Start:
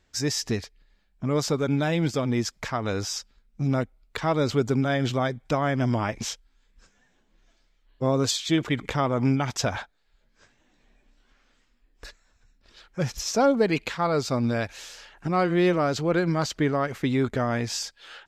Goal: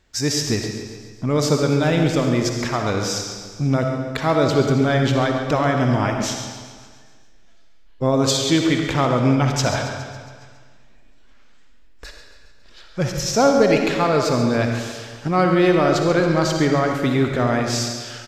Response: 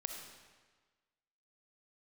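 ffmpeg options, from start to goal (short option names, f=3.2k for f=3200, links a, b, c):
-filter_complex "[0:a]aecho=1:1:138|276|414|552|690|828|966:0.224|0.134|0.0806|0.0484|0.029|0.0174|0.0104[a];[1:a]atrim=start_sample=2205[b];[a][b]afir=irnorm=-1:irlink=0,volume=7dB"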